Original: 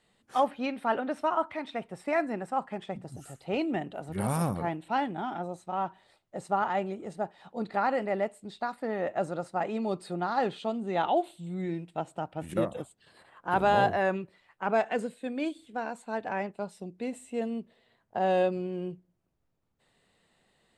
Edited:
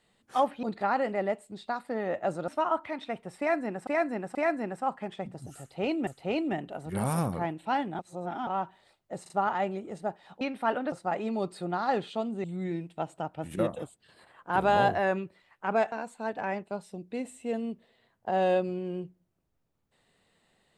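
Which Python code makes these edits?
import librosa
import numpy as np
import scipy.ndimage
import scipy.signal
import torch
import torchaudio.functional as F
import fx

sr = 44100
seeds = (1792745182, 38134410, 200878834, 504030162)

y = fx.edit(x, sr, fx.swap(start_s=0.63, length_s=0.51, other_s=7.56, other_length_s=1.85),
    fx.repeat(start_s=2.05, length_s=0.48, count=3),
    fx.repeat(start_s=3.3, length_s=0.47, count=2),
    fx.reverse_span(start_s=5.22, length_s=0.48),
    fx.stutter(start_s=6.45, slice_s=0.04, count=3),
    fx.cut(start_s=10.93, length_s=0.49),
    fx.cut(start_s=14.9, length_s=0.9), tone=tone)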